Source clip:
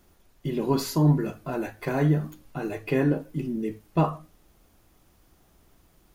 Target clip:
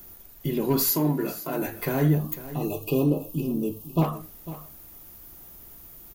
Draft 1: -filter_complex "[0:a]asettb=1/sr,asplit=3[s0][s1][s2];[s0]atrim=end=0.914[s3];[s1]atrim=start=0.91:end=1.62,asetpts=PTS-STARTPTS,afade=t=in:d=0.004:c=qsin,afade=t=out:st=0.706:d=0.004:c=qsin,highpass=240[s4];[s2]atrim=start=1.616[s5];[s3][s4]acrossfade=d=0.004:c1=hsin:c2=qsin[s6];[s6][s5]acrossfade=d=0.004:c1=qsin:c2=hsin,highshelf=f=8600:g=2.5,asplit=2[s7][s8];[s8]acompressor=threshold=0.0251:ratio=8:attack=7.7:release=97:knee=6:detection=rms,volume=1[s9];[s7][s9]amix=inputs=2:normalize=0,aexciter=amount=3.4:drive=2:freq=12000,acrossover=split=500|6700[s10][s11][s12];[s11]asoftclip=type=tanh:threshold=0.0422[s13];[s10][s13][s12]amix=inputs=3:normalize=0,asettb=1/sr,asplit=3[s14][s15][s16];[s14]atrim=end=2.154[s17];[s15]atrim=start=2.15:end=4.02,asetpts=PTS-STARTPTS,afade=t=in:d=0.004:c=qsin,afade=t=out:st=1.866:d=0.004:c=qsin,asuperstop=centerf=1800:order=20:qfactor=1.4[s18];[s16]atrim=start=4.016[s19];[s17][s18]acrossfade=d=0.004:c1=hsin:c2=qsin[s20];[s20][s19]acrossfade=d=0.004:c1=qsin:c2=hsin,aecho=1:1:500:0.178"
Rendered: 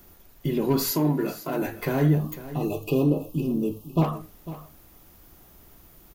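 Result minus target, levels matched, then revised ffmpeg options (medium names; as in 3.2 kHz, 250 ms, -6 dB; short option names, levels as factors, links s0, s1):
compression: peak gain reduction -6.5 dB; 8 kHz band -3.0 dB
-filter_complex "[0:a]asettb=1/sr,asplit=3[s0][s1][s2];[s0]atrim=end=0.914[s3];[s1]atrim=start=0.91:end=1.62,asetpts=PTS-STARTPTS,afade=t=in:d=0.004:c=qsin,afade=t=out:st=0.706:d=0.004:c=qsin,highpass=240[s4];[s2]atrim=start=1.616[s5];[s3][s4]acrossfade=d=0.004:c1=hsin:c2=qsin[s6];[s6][s5]acrossfade=d=0.004:c1=qsin:c2=hsin,highshelf=f=8600:g=13.5,asplit=2[s7][s8];[s8]acompressor=threshold=0.0106:ratio=8:attack=7.7:release=97:knee=6:detection=rms,volume=1[s9];[s7][s9]amix=inputs=2:normalize=0,aexciter=amount=3.4:drive=2:freq=12000,acrossover=split=500|6700[s10][s11][s12];[s11]asoftclip=type=tanh:threshold=0.0422[s13];[s10][s13][s12]amix=inputs=3:normalize=0,asettb=1/sr,asplit=3[s14][s15][s16];[s14]atrim=end=2.154[s17];[s15]atrim=start=2.15:end=4.02,asetpts=PTS-STARTPTS,afade=t=in:d=0.004:c=qsin,afade=t=out:st=1.866:d=0.004:c=qsin,asuperstop=centerf=1800:order=20:qfactor=1.4[s18];[s16]atrim=start=4.016[s19];[s17][s18]acrossfade=d=0.004:c1=hsin:c2=qsin[s20];[s20][s19]acrossfade=d=0.004:c1=qsin:c2=hsin,aecho=1:1:500:0.178"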